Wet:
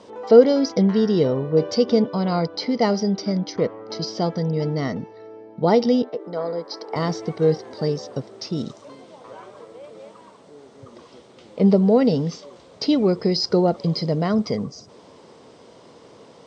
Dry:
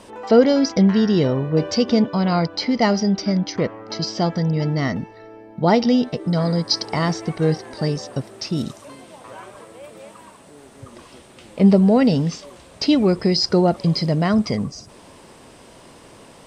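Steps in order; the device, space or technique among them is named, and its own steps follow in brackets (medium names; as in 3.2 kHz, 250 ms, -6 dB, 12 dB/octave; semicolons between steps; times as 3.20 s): 6.02–6.96 s: three-band isolator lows -24 dB, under 290 Hz, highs -13 dB, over 2.3 kHz; car door speaker (cabinet simulation 110–6500 Hz, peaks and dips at 460 Hz +7 dB, 1.7 kHz -5 dB, 2.6 kHz -6 dB); trim -3 dB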